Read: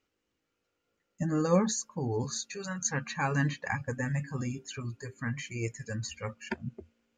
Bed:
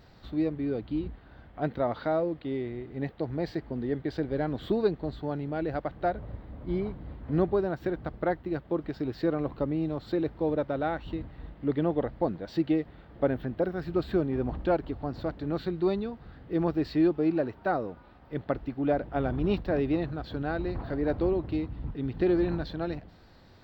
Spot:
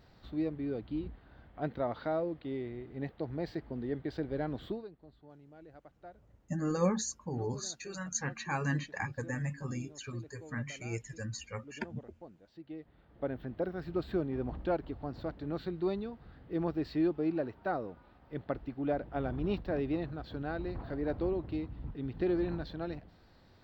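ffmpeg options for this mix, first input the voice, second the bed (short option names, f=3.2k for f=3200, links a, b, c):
-filter_complex "[0:a]adelay=5300,volume=-4dB[a];[1:a]volume=11.5dB,afade=t=out:st=4.59:d=0.27:silence=0.133352,afade=t=in:st=12.63:d=1.05:silence=0.141254[b];[a][b]amix=inputs=2:normalize=0"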